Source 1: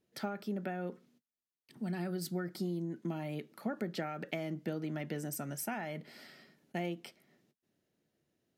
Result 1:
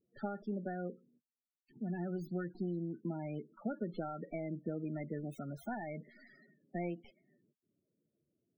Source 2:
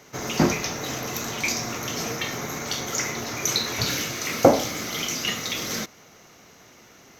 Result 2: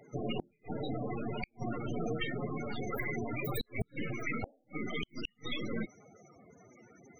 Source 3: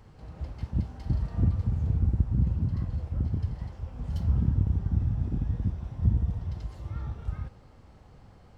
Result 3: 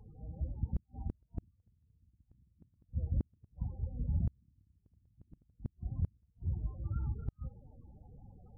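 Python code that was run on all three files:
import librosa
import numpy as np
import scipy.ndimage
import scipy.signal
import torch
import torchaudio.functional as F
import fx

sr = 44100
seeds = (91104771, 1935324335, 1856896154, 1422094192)

y = fx.tracing_dist(x, sr, depth_ms=0.49)
y = fx.spec_topn(y, sr, count=16)
y = fx.gate_flip(y, sr, shuts_db=-21.0, range_db=-42)
y = F.gain(torch.from_numpy(y), -1.5).numpy()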